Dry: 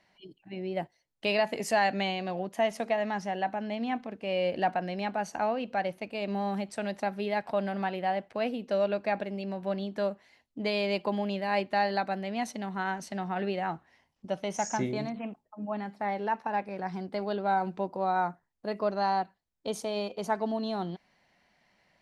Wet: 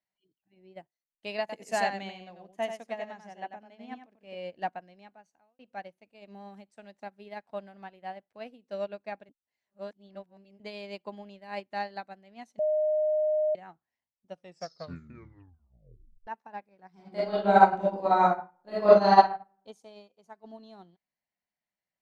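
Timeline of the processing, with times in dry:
1.40–4.35 s: delay 92 ms -3.5 dB
4.93–5.59 s: fade out
9.29–10.60 s: reverse
12.59–13.55 s: bleep 614 Hz -19.5 dBFS
14.28 s: tape stop 1.99 s
16.93–19.21 s: reverb throw, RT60 0.81 s, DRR -6.5 dB
19.89–20.44 s: fade out, to -7 dB
whole clip: peaking EQ 7 kHz +6 dB 0.52 oct; upward expansion 2.5:1, over -38 dBFS; trim +6 dB

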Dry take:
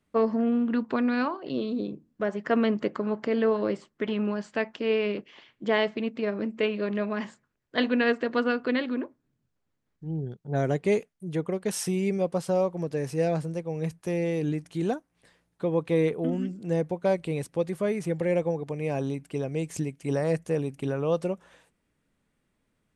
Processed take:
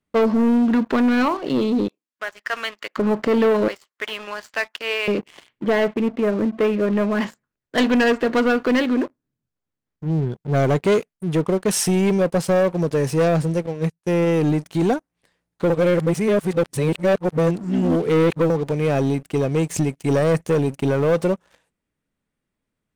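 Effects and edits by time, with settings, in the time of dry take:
1.88–2.97 s: high-pass 1.5 kHz
3.68–5.08 s: high-pass 1 kHz
5.64–7.15 s: distance through air 460 m
13.66–14.27 s: upward expansion 2.5:1, over -38 dBFS
15.70–18.50 s: reverse
whole clip: waveshaping leveller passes 3

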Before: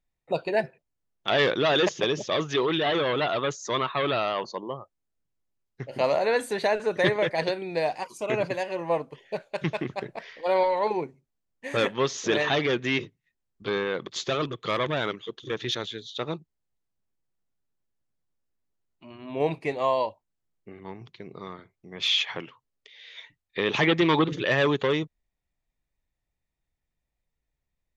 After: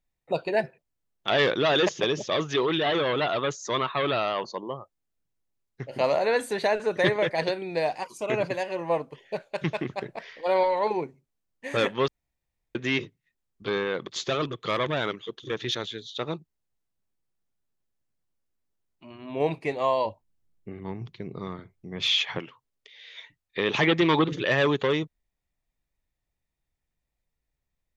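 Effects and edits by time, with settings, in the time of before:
12.08–12.75 s: room tone
20.05–22.39 s: bass shelf 270 Hz +11 dB

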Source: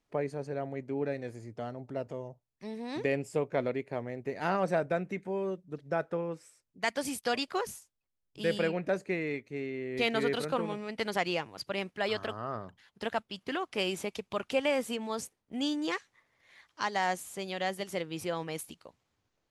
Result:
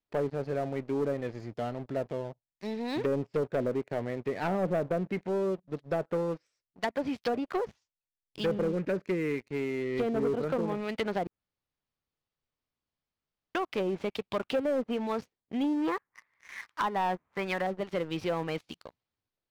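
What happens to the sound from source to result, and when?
8.61–9.42 s: Butterworth band-stop 790 Hz, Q 1.3
11.27–13.55 s: room tone
15.64–17.67 s: high-order bell 1.5 kHz +11 dB
whole clip: low-pass that closes with the level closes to 620 Hz, closed at -26.5 dBFS; resonant high shelf 6.7 kHz -12.5 dB, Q 1.5; waveshaping leveller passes 3; trim -6.5 dB

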